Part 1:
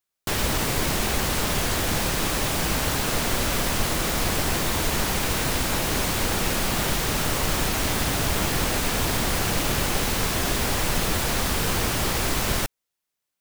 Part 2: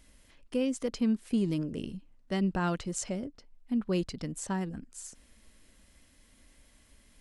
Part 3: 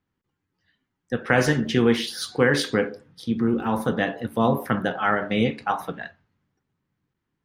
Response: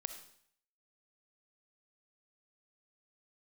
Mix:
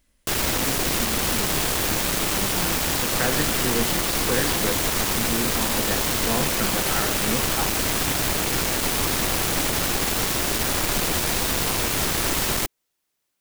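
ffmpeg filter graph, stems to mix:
-filter_complex "[0:a]equalizer=f=320:t=o:w=0.77:g=4,alimiter=limit=0.168:level=0:latency=1:release=12,aeval=exprs='0.168*(cos(1*acos(clip(val(0)/0.168,-1,1)))-cos(1*PI/2))+0.075*(cos(7*acos(clip(val(0)/0.168,-1,1)))-cos(7*PI/2))':c=same,volume=0.944[s0];[1:a]volume=0.447[s1];[2:a]adelay=1900,volume=0.447[s2];[s0][s1][s2]amix=inputs=3:normalize=0"

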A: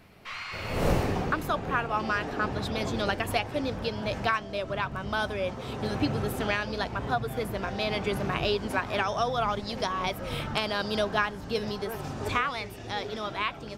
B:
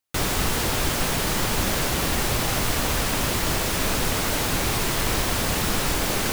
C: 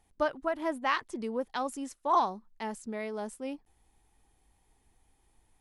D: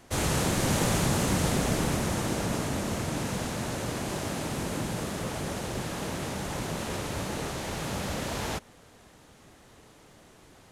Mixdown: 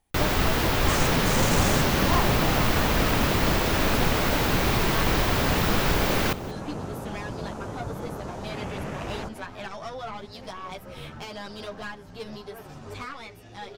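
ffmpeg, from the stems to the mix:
-filter_complex "[0:a]aeval=exprs='(tanh(17.8*val(0)+0.45)-tanh(0.45))/17.8':c=same,asplit=2[s0][s1];[s1]adelay=10.3,afreqshift=2.3[s2];[s0][s2]amix=inputs=2:normalize=1,adelay=650,volume=0.794[s3];[1:a]equalizer=f=9200:w=0.68:g=-11.5,volume=1.19,asplit=2[s4][s5];[s5]volume=0.112[s6];[2:a]volume=0.631[s7];[3:a]afwtdn=0.0141,equalizer=f=6300:w=1.5:g=6.5,adelay=700,volume=0.841[s8];[s6]aecho=0:1:183:1[s9];[s3][s4][s7][s8][s9]amix=inputs=5:normalize=0"

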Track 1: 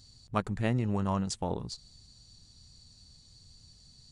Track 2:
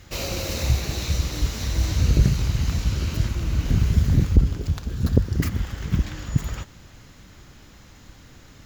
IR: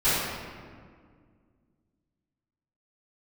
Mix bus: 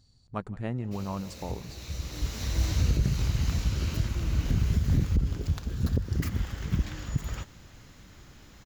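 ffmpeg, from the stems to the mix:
-filter_complex "[0:a]highshelf=f=2500:g=-9.5,volume=0.668,asplit=3[s0][s1][s2];[s1]volume=0.0841[s3];[1:a]adelay=800,volume=0.631[s4];[s2]apad=whole_len=416760[s5];[s4][s5]sidechaincompress=threshold=0.00562:ratio=6:attack=20:release=916[s6];[s3]aecho=0:1:168:1[s7];[s0][s6][s7]amix=inputs=3:normalize=0,alimiter=limit=0.168:level=0:latency=1:release=151"

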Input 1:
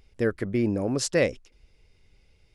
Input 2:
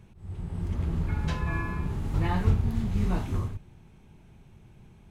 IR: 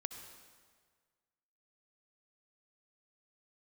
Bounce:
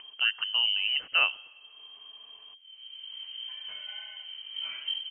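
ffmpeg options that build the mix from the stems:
-filter_complex "[0:a]acompressor=mode=upward:threshold=0.0178:ratio=2.5,volume=0.668,asplit=2[s0][s1];[s1]volume=0.188[s2];[1:a]flanger=delay=18.5:depth=2.1:speed=2.6,adelay=2400,volume=0.316,asplit=2[s3][s4];[s4]volume=0.376[s5];[2:a]atrim=start_sample=2205[s6];[s2][s6]afir=irnorm=-1:irlink=0[s7];[s5]aecho=0:1:71:1[s8];[s0][s3][s7][s8]amix=inputs=4:normalize=0,lowpass=f=2700:t=q:w=0.5098,lowpass=f=2700:t=q:w=0.6013,lowpass=f=2700:t=q:w=0.9,lowpass=f=2700:t=q:w=2.563,afreqshift=-3200"

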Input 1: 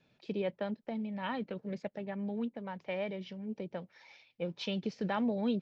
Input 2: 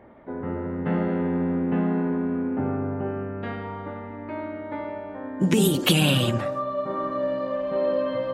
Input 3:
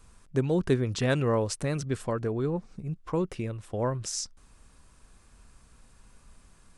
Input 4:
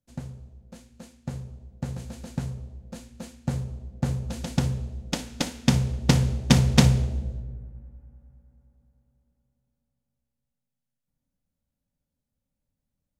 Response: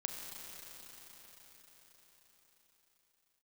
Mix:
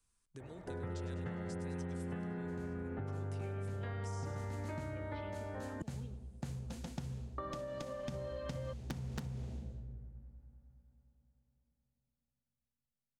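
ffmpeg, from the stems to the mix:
-filter_complex "[0:a]lowpass=3400,adelay=550,volume=0.224,asplit=2[s0][s1];[s1]volume=0.0891[s2];[1:a]equalizer=f=100:t=o:w=0.67:g=9,equalizer=f=250:t=o:w=0.67:g=-11,equalizer=f=1000:t=o:w=0.67:g=-6,equalizer=f=2500:t=o:w=0.67:g=-6,adelay=400,volume=0.944,asplit=3[s3][s4][s5];[s3]atrim=end=5.82,asetpts=PTS-STARTPTS,afade=t=out:st=5.816:d=0.004:c=hsin[s6];[s4]atrim=start=5.82:end=7.38,asetpts=PTS-STARTPTS,volume=0[s7];[s5]atrim=start=7.38,asetpts=PTS-STARTPTS,afade=t=in:d=0.004:c=hsin[s8];[s6][s7][s8]concat=n=3:v=0:a=1[s9];[2:a]agate=range=0.398:threshold=0.00562:ratio=16:detection=peak,highshelf=f=2800:g=12,volume=0.119,asplit=2[s10][s11];[s11]volume=0.0891[s12];[3:a]adelay=2400,volume=0.335[s13];[s0][s10]amix=inputs=2:normalize=0,acompressor=threshold=0.00398:ratio=6,volume=1[s14];[s9][s13]amix=inputs=2:normalize=0,aeval=exprs='(mod(4.22*val(0)+1,2)-1)/4.22':c=same,acompressor=threshold=0.0282:ratio=6,volume=1[s15];[s2][s12]amix=inputs=2:normalize=0,aecho=0:1:100|200|300|400|500|600|700|800:1|0.55|0.303|0.166|0.0915|0.0503|0.0277|0.0152[s16];[s14][s15][s16]amix=inputs=3:normalize=0,equalizer=f=590:t=o:w=0.39:g=-3.5,acrossover=split=120|1600[s17][s18][s19];[s17]acompressor=threshold=0.00562:ratio=4[s20];[s18]acompressor=threshold=0.00794:ratio=4[s21];[s19]acompressor=threshold=0.002:ratio=4[s22];[s20][s21][s22]amix=inputs=3:normalize=0"

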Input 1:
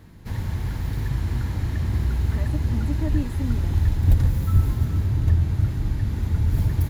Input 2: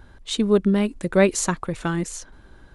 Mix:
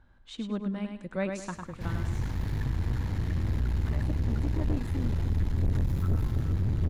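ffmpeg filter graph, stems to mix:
-filter_complex "[0:a]aeval=exprs='(tanh(12.6*val(0)+0.55)-tanh(0.55))/12.6':c=same,adelay=1550,volume=0.891[s0];[1:a]lowpass=f=3700:p=1,equalizer=f=410:w=4.3:g=-9.5,volume=0.224,asplit=2[s1][s2];[s2]volume=0.531,aecho=0:1:103|206|309|412|515:1|0.32|0.102|0.0328|0.0105[s3];[s0][s1][s3]amix=inputs=3:normalize=0,highshelf=f=9300:g=-9.5"

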